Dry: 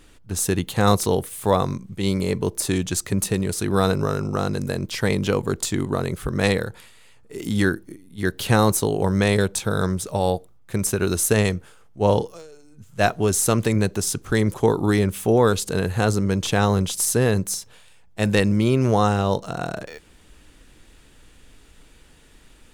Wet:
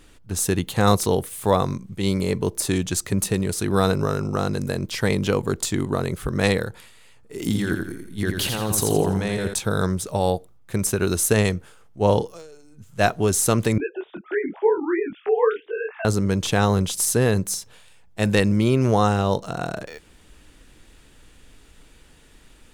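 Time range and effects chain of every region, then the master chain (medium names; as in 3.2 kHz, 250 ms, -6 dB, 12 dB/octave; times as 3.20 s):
7.41–9.54 s: compressor with a negative ratio -24 dBFS + feedback delay 84 ms, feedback 41%, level -5 dB
13.78–16.05 s: formants replaced by sine waves + detune thickener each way 51 cents
whole clip: none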